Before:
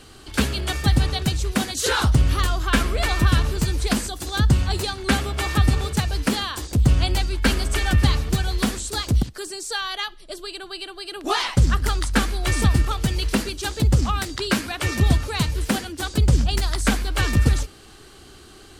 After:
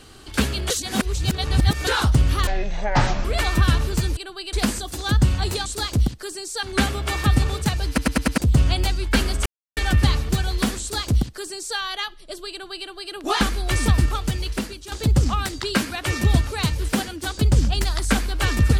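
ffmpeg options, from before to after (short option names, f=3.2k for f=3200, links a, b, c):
-filter_complex "[0:a]asplit=17[a][b][c][d][e][f][g][h][i][j][k][l][m][n][o][p][q];[a]atrim=end=0.702[r];[b]atrim=start=0.698:end=1.872,asetpts=PTS-STARTPTS,areverse[s];[c]atrim=start=1.868:end=2.474[t];[d]atrim=start=2.47:end=2.89,asetpts=PTS-STARTPTS,asetrate=23814,aresample=44100[u];[e]atrim=start=2.886:end=3.812[v];[f]atrim=start=10.508:end=10.872[w];[g]atrim=start=3.808:end=4.942[x];[h]atrim=start=8.808:end=9.782[y];[i]atrim=start=4.938:end=6.292[z];[j]atrim=start=6.188:end=6.292[aa];[k]atrim=start=6.188:end=6.292[ab];[l]atrim=start=6.188:end=6.292[ac];[m]atrim=start=6.188:end=6.292[ad];[n]atrim=start=6.688:end=7.77,asetpts=PTS-STARTPTS,afade=t=out:st=1.078:d=0.004:c=hsin,apad=pad_dur=0.31[ae];[o]atrim=start=7.77:end=11.412,asetpts=PTS-STARTPTS,afade=t=in:d=0.004:c=hsin[af];[p]atrim=start=12.168:end=13.68,asetpts=PTS-STARTPTS,afade=t=out:st=0.662:d=0.85:silence=0.298538[ag];[q]atrim=start=13.68,asetpts=PTS-STARTPTS,afade=t=in:d=0.004:c=hsin:silence=0.298538[ah];[r][s]acrossfade=d=0.004:c1=hsin:c2=hsin[ai];[ai][t]acrossfade=d=0.004:c1=hsin:c2=hsin[aj];[aj][u]acrossfade=d=0.004:c1=hsin:c2=hsin[ak];[ak][v]acrossfade=d=0.004:c1=hsin:c2=hsin[al];[al][w]acrossfade=d=0.004:c1=hsin:c2=hsin[am];[am][x]acrossfade=d=0.004:c1=hsin:c2=hsin[an];[an][y]acrossfade=d=0.004:c1=hsin:c2=hsin[ao];[ao][z]acrossfade=d=0.004:c1=hsin:c2=hsin[ap];[ap][aa]acrossfade=d=0.004:c1=hsin:c2=hsin[aq];[aq][ab]acrossfade=d=0.004:c1=hsin:c2=hsin[ar];[ar][ac]acrossfade=d=0.004:c1=hsin:c2=hsin[as];[as][ad]acrossfade=d=0.004:c1=hsin:c2=hsin[at];[ae][af]concat=n=2:v=0:a=1[au];[at][au]acrossfade=d=0.004:c1=hsin:c2=hsin[av];[ag][ah]concat=n=2:v=0:a=1[aw];[av][aw]acrossfade=d=0.004:c1=hsin:c2=hsin"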